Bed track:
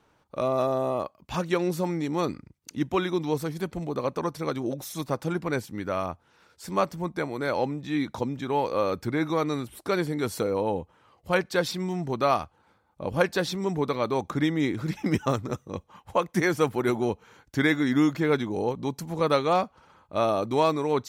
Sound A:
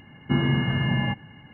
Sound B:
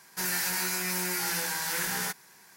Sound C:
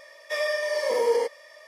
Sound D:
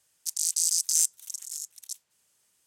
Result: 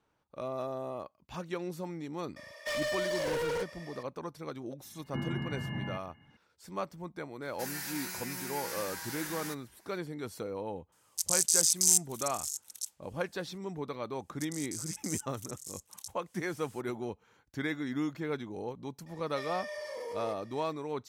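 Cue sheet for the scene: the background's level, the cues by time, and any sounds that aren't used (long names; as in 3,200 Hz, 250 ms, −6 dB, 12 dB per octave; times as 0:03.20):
bed track −11.5 dB
0:02.36: mix in C −1 dB + hard clipping −30.5 dBFS
0:04.84: mix in A −13.5 dB
0:07.42: mix in B −10 dB
0:10.92: mix in D −0.5 dB
0:14.15: mix in D −16 dB + camcorder AGC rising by 53 dB per second, up to +27 dB
0:19.06: mix in C −11.5 dB + brickwall limiter −21 dBFS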